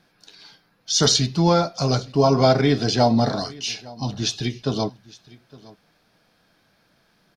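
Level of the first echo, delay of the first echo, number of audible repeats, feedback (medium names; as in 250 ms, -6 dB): -22.0 dB, 862 ms, 1, no regular repeats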